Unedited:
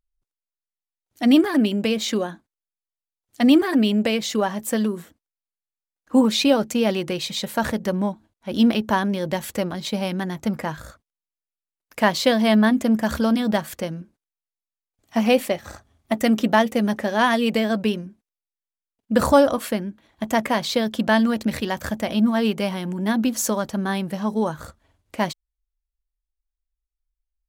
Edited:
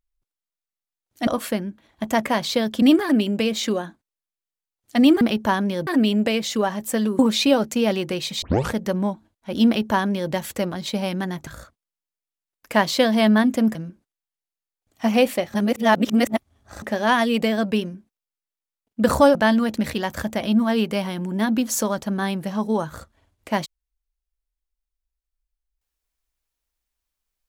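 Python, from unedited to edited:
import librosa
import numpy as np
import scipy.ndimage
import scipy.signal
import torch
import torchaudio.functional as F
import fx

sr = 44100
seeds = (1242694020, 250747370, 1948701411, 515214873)

y = fx.edit(x, sr, fx.cut(start_s=4.98, length_s=1.2),
    fx.tape_start(start_s=7.41, length_s=0.3),
    fx.duplicate(start_s=8.65, length_s=0.66, to_s=3.66),
    fx.cut(start_s=10.46, length_s=0.28),
    fx.cut(start_s=13.02, length_s=0.85),
    fx.reverse_span(start_s=15.66, length_s=1.28),
    fx.move(start_s=19.47, length_s=1.55, to_s=1.27), tone=tone)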